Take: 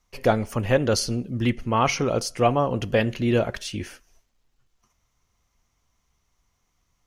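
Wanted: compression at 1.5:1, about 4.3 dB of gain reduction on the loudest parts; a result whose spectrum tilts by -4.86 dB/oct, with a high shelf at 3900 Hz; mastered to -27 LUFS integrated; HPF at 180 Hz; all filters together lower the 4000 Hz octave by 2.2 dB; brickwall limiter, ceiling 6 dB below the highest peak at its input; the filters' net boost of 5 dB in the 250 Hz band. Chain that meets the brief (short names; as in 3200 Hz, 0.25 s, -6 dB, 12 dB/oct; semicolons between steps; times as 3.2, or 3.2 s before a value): HPF 180 Hz; bell 250 Hz +7 dB; high shelf 3900 Hz +3.5 dB; bell 4000 Hz -5.5 dB; compressor 1.5:1, threshold -25 dBFS; limiter -14 dBFS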